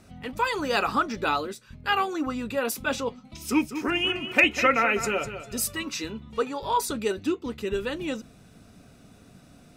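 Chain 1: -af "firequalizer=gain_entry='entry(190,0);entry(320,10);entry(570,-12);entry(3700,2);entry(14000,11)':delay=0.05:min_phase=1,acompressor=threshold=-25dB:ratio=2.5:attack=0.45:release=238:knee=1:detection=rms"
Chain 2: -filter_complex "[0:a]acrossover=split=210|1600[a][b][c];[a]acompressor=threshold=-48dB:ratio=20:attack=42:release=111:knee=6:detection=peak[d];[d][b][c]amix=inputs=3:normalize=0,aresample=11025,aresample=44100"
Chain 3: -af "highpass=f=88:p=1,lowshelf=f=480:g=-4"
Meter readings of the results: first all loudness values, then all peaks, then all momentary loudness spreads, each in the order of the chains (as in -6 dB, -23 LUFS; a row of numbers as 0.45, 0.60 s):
-30.5, -26.5, -27.5 LUFS; -17.0, -6.5, -8.0 dBFS; 21, 13, 13 LU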